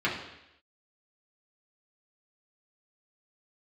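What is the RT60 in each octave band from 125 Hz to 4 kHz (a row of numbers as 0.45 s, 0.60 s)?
0.75 s, 0.80 s, 0.85 s, 0.85 s, 0.90 s, 0.90 s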